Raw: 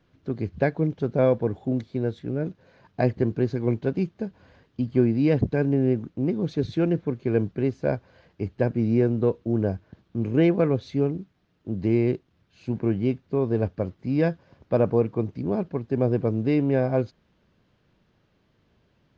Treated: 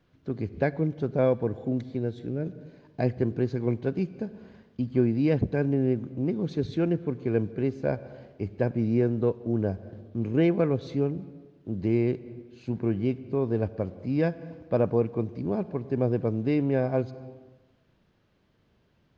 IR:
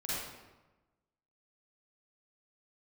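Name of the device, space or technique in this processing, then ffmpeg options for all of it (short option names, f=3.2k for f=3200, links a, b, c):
ducked reverb: -filter_complex "[0:a]asettb=1/sr,asplit=3[a][b][c];[a]atrim=end=1.994[d];[b]atrim=start=1.99:end=3.06,asetpts=PTS-STARTPTS,afade=t=in:d=0.004:c=qsin,afade=t=out:st=1.066:d=0.004:c=qsin,equalizer=f=1.1k:w=0.8:g=-5[e];[c]atrim=start=3.056[f];[d][e]acrossfade=d=0.004:c1=hsin:c2=qsin[g];[g][f]acrossfade=d=0.004:c1=qsin:c2=hsin,asplit=3[h][i][j];[1:a]atrim=start_sample=2205[k];[i][k]afir=irnorm=-1:irlink=0[l];[j]apad=whole_len=845817[m];[l][m]sidechaincompress=threshold=-32dB:ratio=8:attack=20:release=202,volume=-13.5dB[n];[h][n]amix=inputs=2:normalize=0,volume=-3dB"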